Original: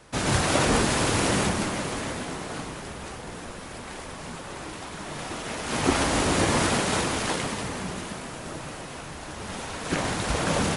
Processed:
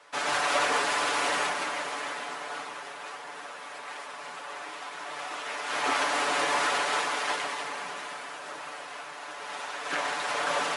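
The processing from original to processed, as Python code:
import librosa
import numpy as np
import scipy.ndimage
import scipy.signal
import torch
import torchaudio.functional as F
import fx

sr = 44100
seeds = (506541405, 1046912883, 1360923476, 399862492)

y = scipy.signal.sosfilt(scipy.signal.butter(2, 800.0, 'highpass', fs=sr, output='sos'), x)
y = fx.high_shelf(y, sr, hz=3400.0, db=-8.0)
y = y + 0.66 * np.pad(y, (int(6.9 * sr / 1000.0), 0))[:len(y)]
y = 10.0 ** (-16.5 / 20.0) * np.tanh(y / 10.0 ** (-16.5 / 20.0))
y = fx.high_shelf(y, sr, hz=8200.0, db=-7.0)
y = y * 10.0 ** (2.0 / 20.0)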